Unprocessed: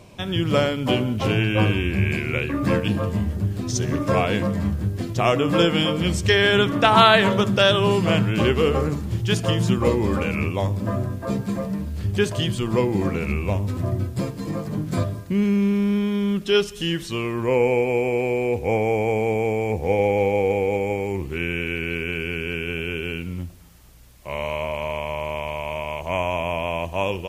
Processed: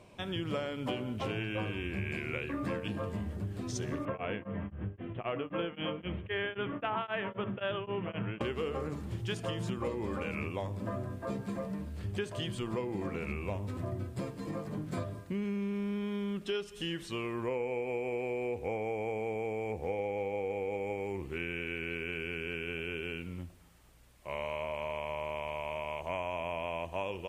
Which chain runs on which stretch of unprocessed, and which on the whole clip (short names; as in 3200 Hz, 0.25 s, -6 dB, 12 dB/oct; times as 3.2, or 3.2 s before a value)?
4.05–8.41 steep low-pass 3200 Hz 72 dB/oct + beating tremolo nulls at 3.8 Hz
whole clip: tone controls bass -5 dB, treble -8 dB; compressor, threshold -24 dBFS; bell 8600 Hz +5 dB 0.51 oct; gain -7.5 dB